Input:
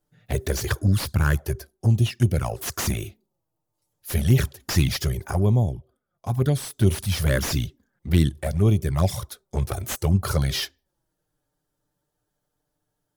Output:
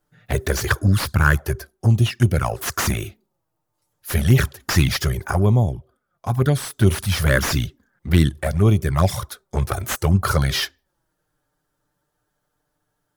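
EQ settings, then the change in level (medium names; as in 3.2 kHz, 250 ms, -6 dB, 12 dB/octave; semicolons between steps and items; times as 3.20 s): peaking EQ 1.4 kHz +7 dB 1.3 oct; +3.0 dB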